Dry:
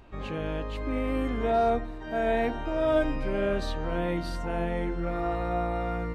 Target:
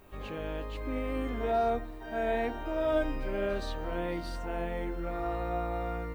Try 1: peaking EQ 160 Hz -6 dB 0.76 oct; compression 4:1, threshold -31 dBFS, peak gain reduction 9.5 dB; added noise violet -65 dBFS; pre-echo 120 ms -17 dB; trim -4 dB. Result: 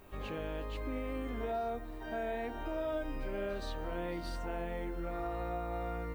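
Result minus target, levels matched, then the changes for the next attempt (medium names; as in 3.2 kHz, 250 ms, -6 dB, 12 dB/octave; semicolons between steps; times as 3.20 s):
compression: peak gain reduction +9.5 dB
remove: compression 4:1, threshold -31 dBFS, peak gain reduction 9.5 dB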